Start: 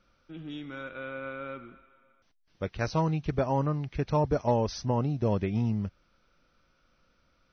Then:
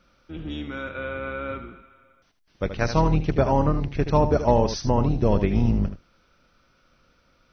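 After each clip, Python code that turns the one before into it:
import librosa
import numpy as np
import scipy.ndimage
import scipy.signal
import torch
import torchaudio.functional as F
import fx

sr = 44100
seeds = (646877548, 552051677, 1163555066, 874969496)

y = fx.octave_divider(x, sr, octaves=2, level_db=2.0)
y = fx.low_shelf(y, sr, hz=100.0, db=-6.0)
y = y + 10.0 ** (-10.0 / 20.0) * np.pad(y, (int(77 * sr / 1000.0), 0))[:len(y)]
y = y * 10.0 ** (6.5 / 20.0)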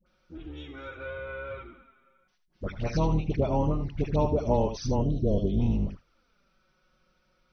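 y = fx.spec_box(x, sr, start_s=4.97, length_s=0.59, low_hz=730.0, high_hz=2900.0, gain_db=-18)
y = fx.dispersion(y, sr, late='highs', ms=63.0, hz=840.0)
y = fx.env_flanger(y, sr, rest_ms=5.6, full_db=-18.5)
y = y * 10.0 ** (-4.5 / 20.0)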